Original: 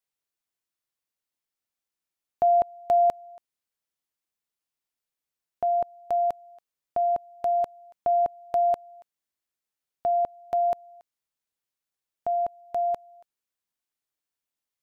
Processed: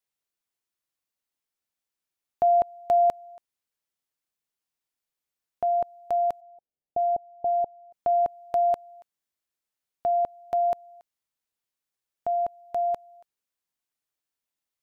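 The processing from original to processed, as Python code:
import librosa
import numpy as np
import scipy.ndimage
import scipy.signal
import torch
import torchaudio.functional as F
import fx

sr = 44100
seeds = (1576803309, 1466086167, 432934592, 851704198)

y = fx.ellip_lowpass(x, sr, hz=800.0, order=4, stop_db=40, at=(6.4, 7.92), fade=0.02)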